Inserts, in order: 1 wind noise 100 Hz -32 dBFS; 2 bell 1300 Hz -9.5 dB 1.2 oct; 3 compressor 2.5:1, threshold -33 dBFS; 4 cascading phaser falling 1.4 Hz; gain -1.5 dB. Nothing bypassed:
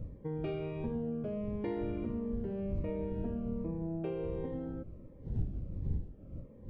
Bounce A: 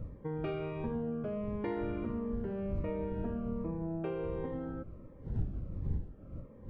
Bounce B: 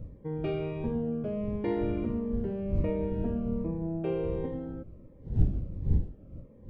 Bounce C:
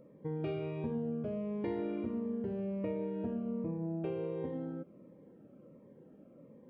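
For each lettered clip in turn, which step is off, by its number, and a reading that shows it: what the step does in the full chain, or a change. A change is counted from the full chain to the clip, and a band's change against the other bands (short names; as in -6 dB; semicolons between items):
2, 1 kHz band +4.5 dB; 3, mean gain reduction 4.5 dB; 1, 125 Hz band -4.0 dB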